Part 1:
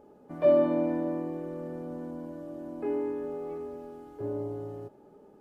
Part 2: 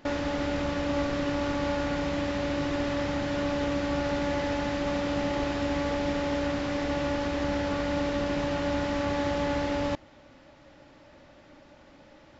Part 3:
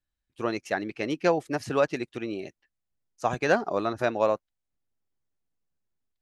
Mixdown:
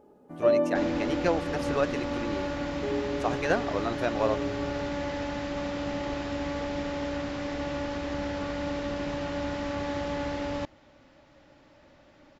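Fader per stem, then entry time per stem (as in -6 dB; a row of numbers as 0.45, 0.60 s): -1.5, -3.5, -3.5 dB; 0.00, 0.70, 0.00 s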